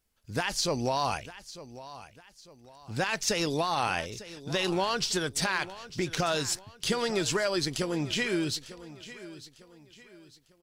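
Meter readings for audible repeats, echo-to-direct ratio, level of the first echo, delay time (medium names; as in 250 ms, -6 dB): 3, -15.5 dB, -16.0 dB, 900 ms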